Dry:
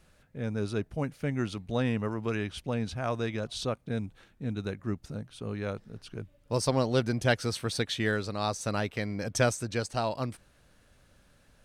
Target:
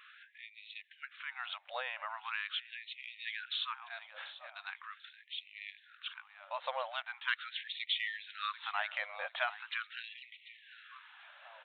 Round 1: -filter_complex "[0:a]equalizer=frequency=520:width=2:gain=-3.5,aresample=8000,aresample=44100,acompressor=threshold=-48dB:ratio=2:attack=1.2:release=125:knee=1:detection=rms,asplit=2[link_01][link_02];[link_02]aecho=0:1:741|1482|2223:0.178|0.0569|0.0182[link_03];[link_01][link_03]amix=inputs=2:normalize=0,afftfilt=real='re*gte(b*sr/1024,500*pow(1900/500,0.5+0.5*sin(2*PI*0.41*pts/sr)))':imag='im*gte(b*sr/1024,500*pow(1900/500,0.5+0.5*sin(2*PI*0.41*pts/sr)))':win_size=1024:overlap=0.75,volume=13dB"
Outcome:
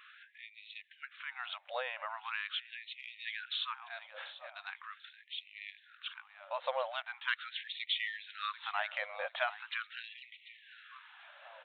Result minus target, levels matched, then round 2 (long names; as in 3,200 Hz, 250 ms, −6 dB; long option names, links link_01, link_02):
500 Hz band +4.5 dB
-filter_complex "[0:a]equalizer=frequency=520:width=2:gain=-10.5,aresample=8000,aresample=44100,acompressor=threshold=-48dB:ratio=2:attack=1.2:release=125:knee=1:detection=rms,asplit=2[link_01][link_02];[link_02]aecho=0:1:741|1482|2223:0.178|0.0569|0.0182[link_03];[link_01][link_03]amix=inputs=2:normalize=0,afftfilt=real='re*gte(b*sr/1024,500*pow(1900/500,0.5+0.5*sin(2*PI*0.41*pts/sr)))':imag='im*gte(b*sr/1024,500*pow(1900/500,0.5+0.5*sin(2*PI*0.41*pts/sr)))':win_size=1024:overlap=0.75,volume=13dB"